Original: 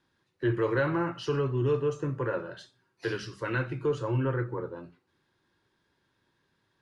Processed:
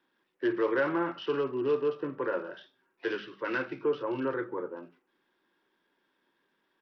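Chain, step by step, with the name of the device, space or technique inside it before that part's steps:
Bluetooth headset (high-pass filter 220 Hz 24 dB per octave; downsampling to 8,000 Hz; SBC 64 kbit/s 44,100 Hz)

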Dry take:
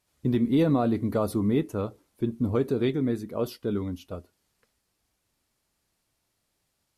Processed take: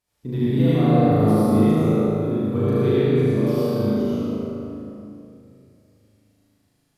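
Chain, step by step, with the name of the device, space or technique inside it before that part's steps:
tunnel (flutter between parallel walls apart 6.5 metres, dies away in 1.4 s; convolution reverb RT60 2.6 s, pre-delay 64 ms, DRR −8 dB)
level −7 dB

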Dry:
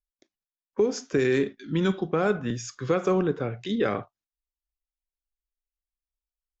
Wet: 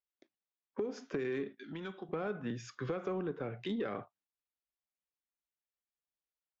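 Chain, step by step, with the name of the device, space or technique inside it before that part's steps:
AM radio (band-pass filter 130–3,200 Hz; downward compressor 5 to 1, threshold −31 dBFS, peak gain reduction 12 dB; soft clipping −23 dBFS, distortion −22 dB)
0:01.63–0:02.09: low-shelf EQ 430 Hz −10.5 dB
level −2 dB

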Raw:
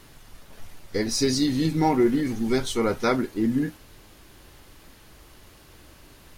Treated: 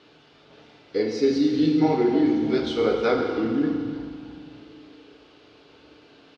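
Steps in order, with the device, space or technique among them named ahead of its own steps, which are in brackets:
0:01.05–0:01.53: parametric band 4,100 Hz −6 dB 1.3 octaves
high-pass filter 390 Hz 6 dB per octave
frequency-shifting delay pedal into a guitar cabinet (echo with shifted repeats 299 ms, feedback 56%, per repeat −140 Hz, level −16 dB; loudspeaker in its box 77–4,200 Hz, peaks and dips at 88 Hz −8 dB, 420 Hz +6 dB, 1,000 Hz −6 dB, 1,900 Hz −8 dB)
low-shelf EQ 110 Hz +4.5 dB
feedback delay network reverb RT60 2 s, low-frequency decay 1×, high-frequency decay 0.85×, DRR 1 dB

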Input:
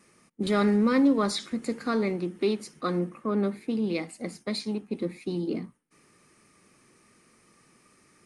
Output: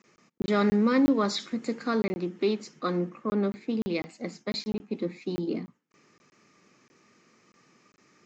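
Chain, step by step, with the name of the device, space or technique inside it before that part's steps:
call with lost packets (high-pass filter 130 Hz 12 dB per octave; downsampling to 16,000 Hz; dropped packets of 20 ms random)

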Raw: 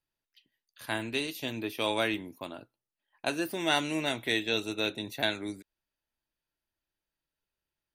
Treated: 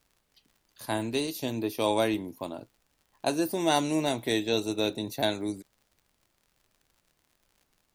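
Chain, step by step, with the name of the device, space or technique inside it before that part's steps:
flat-topped bell 2,100 Hz −9.5 dB
vinyl LP (tape wow and flutter 17 cents; surface crackle 81 per second −55 dBFS; pink noise bed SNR 43 dB)
level +5 dB

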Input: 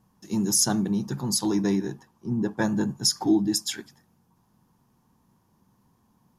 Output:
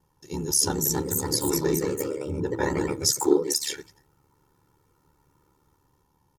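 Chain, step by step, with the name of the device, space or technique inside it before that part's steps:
0:03.20–0:03.60: high-pass filter 160 Hz → 570 Hz 12 dB per octave
delay with pitch and tempo change per echo 347 ms, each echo +2 semitones, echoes 3
ring-modulated robot voice (ring modulation 36 Hz; comb filter 2.2 ms, depth 77%)

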